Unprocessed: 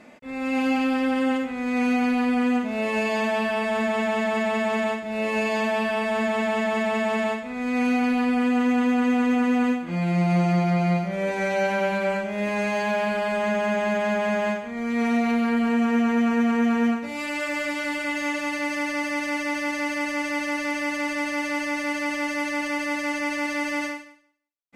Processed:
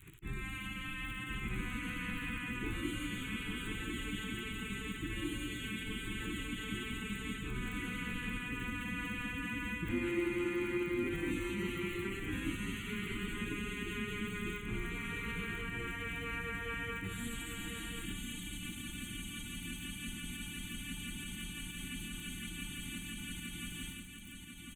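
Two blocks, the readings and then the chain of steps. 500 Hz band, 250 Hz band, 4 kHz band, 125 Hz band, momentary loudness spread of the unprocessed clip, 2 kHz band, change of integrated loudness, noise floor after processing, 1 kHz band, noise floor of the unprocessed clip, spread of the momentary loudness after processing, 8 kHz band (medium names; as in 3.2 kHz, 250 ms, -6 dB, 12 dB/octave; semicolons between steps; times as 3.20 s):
-20.0 dB, -17.5 dB, -7.0 dB, -11.0 dB, 5 LU, -13.0 dB, -15.5 dB, -46 dBFS, -21.5 dB, -34 dBFS, 6 LU, -6.0 dB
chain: crackle 30 per s -35 dBFS; spectral gate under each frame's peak -15 dB weak; amplifier tone stack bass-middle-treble 6-0-2; in parallel at -2 dB: compressor with a negative ratio -60 dBFS; on the sum: peak limiter -43.5 dBFS, peak gain reduction 5.5 dB; Butterworth band-stop 5.1 kHz, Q 1.1; resonant low shelf 450 Hz +11 dB, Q 3; on a send: delay 1047 ms -5.5 dB; on the sum: trim +10.5 dB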